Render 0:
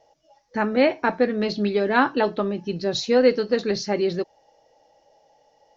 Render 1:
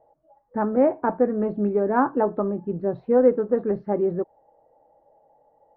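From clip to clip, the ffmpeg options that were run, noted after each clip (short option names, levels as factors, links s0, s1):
-af "lowpass=f=1200:w=0.5412,lowpass=f=1200:w=1.3066"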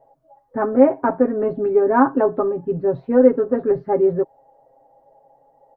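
-af "aecho=1:1:7.4:0.86,volume=1.33"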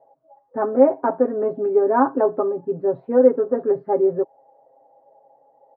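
-af "bandpass=f=610:t=q:w=0.69:csg=0"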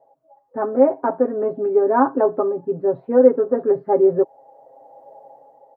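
-af "dynaudnorm=f=240:g=7:m=6.31,volume=0.891"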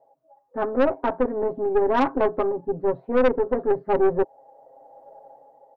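-af "aeval=exprs='(tanh(5.01*val(0)+0.6)-tanh(0.6))/5.01':c=same"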